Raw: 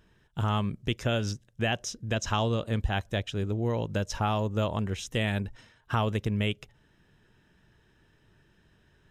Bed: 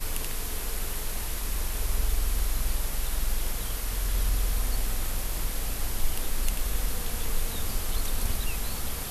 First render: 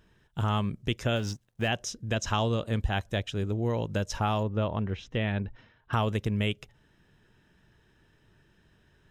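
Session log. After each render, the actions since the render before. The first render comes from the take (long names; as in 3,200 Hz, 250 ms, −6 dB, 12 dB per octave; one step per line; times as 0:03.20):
0:01.16–0:01.68: mu-law and A-law mismatch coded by A
0:04.43–0:05.93: high-frequency loss of the air 240 metres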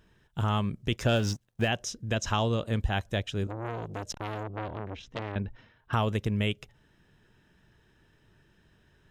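0:00.92–0:01.65: leveller curve on the samples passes 1
0:03.47–0:05.36: saturating transformer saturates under 1,500 Hz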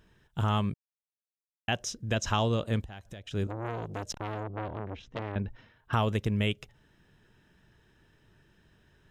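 0:00.74–0:01.68: silence
0:02.82–0:03.31: downward compressor 16 to 1, threshold −39 dBFS
0:04.18–0:05.39: high-shelf EQ 3,400 Hz −8.5 dB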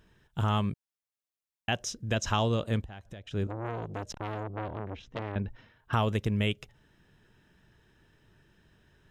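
0:02.77–0:04.23: high-shelf EQ 4,300 Hz −7.5 dB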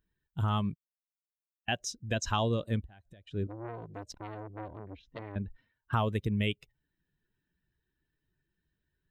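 spectral dynamics exaggerated over time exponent 1.5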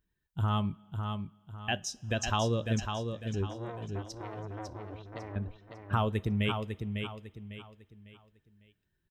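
on a send: repeating echo 551 ms, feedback 34%, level −6 dB
on the sum: coupled-rooms reverb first 0.23 s, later 2.3 s, from −21 dB, DRR 15 dB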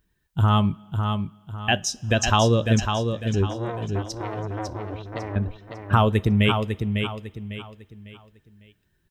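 level +10.5 dB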